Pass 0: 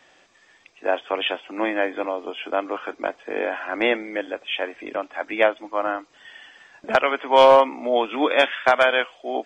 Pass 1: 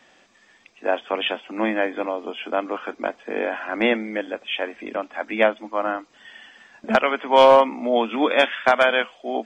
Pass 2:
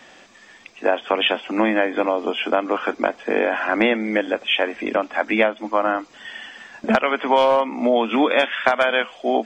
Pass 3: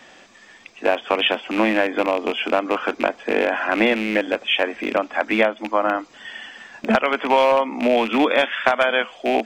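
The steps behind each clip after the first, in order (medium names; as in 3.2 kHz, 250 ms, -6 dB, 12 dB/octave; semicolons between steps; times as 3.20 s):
peaking EQ 220 Hz +12.5 dB 0.28 oct
compression 5:1, threshold -23 dBFS, peak gain reduction 13 dB; trim +8.5 dB
rattle on loud lows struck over -30 dBFS, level -16 dBFS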